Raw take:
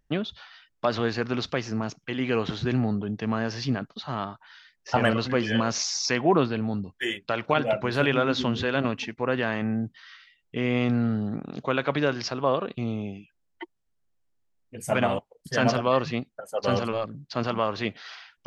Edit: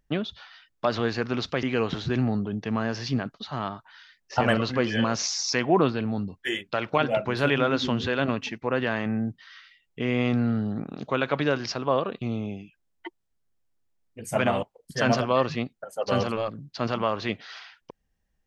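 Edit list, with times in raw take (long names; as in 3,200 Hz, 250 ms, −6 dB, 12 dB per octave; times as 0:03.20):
0:01.63–0:02.19: remove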